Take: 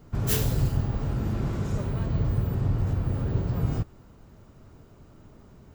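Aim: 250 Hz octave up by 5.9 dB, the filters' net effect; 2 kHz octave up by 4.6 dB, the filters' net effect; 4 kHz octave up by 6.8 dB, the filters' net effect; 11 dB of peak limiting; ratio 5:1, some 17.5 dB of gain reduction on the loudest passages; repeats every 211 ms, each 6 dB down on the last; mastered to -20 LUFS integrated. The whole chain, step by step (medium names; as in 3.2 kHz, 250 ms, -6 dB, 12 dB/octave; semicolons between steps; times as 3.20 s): peaking EQ 250 Hz +8.5 dB; peaking EQ 2 kHz +4 dB; peaking EQ 4 kHz +7.5 dB; compression 5:1, threshold -39 dBFS; peak limiter -37.5 dBFS; feedback delay 211 ms, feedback 50%, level -6 dB; trim +25.5 dB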